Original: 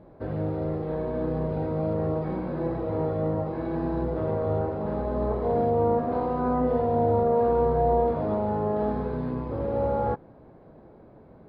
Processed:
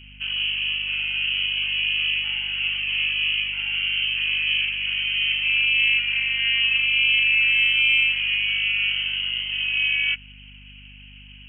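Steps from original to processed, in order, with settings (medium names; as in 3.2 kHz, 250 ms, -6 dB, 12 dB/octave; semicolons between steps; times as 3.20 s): frequency inversion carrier 3.1 kHz; hum 50 Hz, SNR 24 dB; trim +3 dB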